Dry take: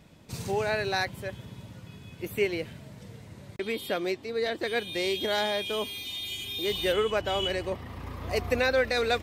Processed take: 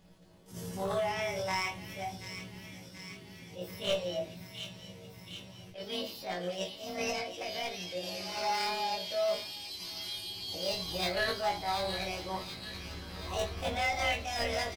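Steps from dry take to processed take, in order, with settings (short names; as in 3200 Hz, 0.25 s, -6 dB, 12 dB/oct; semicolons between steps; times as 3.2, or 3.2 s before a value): spectral repair 5.01–5.29, 230–7800 Hz both; granular stretch 1.6×, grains 57 ms; hard clip -21.5 dBFS, distortion -19 dB; formant shift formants +5 st; doubler 17 ms -4.5 dB; thin delay 0.731 s, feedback 67%, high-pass 2200 Hz, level -7 dB; shoebox room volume 180 m³, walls furnished, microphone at 1.1 m; attack slew limiter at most 150 dB/s; gain -8 dB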